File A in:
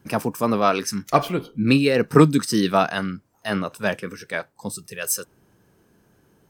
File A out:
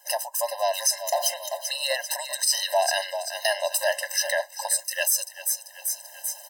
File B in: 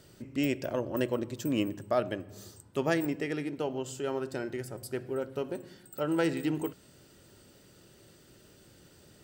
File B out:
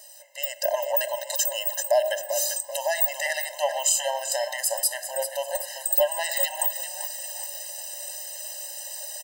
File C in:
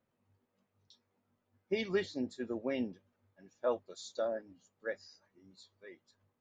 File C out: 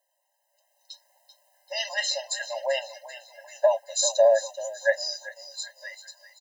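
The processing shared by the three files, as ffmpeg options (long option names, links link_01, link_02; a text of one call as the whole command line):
ffmpeg -i in.wav -filter_complex "[0:a]highpass=130,lowshelf=frequency=430:gain=7.5,acompressor=threshold=-26dB:ratio=6,bass=frequency=250:gain=-3,treble=frequency=4000:gain=14,asplit=6[link_01][link_02][link_03][link_04][link_05][link_06];[link_02]adelay=389,afreqshift=-35,volume=-13.5dB[link_07];[link_03]adelay=778,afreqshift=-70,volume=-20.1dB[link_08];[link_04]adelay=1167,afreqshift=-105,volume=-26.6dB[link_09];[link_05]adelay=1556,afreqshift=-140,volume=-33.2dB[link_10];[link_06]adelay=1945,afreqshift=-175,volume=-39.7dB[link_11];[link_01][link_07][link_08][link_09][link_10][link_11]amix=inputs=6:normalize=0,dynaudnorm=framelen=140:gausssize=11:maxgain=11dB,alimiter=level_in=13dB:limit=-1dB:release=50:level=0:latency=1,afftfilt=real='re*eq(mod(floor(b*sr/1024/530),2),1)':imag='im*eq(mod(floor(b*sr/1024/530),2),1)':win_size=1024:overlap=0.75,volume=-7dB" out.wav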